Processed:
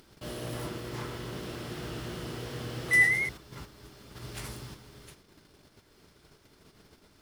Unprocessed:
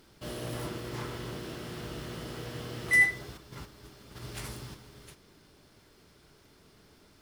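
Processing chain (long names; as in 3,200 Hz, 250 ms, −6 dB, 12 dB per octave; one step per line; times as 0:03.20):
noise gate −57 dBFS, range −14 dB
upward compression, threshold −47 dBFS
0:01.22–0:03.29: feedback echo with a swinging delay time 106 ms, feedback 69%, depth 115 cents, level −7 dB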